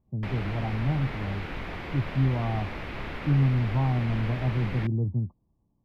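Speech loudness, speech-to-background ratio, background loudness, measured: -28.5 LUFS, 8.5 dB, -37.0 LUFS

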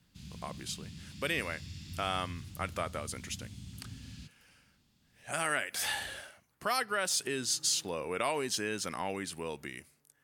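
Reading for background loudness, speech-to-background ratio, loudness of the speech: -47.0 LUFS, 12.5 dB, -34.5 LUFS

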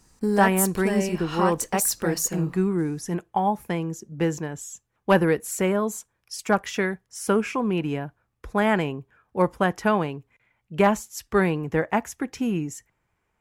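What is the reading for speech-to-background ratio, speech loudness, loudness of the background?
1.0 dB, -25.5 LUFS, -26.5 LUFS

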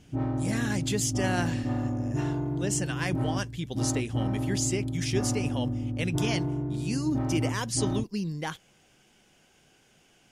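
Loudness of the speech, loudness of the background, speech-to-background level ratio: -32.0 LUFS, -31.0 LUFS, -1.0 dB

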